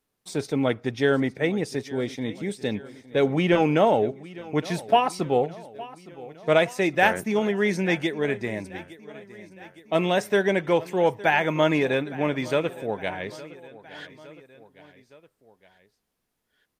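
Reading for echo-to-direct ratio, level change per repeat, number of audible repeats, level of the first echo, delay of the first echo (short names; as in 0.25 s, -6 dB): -17.5 dB, -4.5 dB, 3, -19.0 dB, 0.863 s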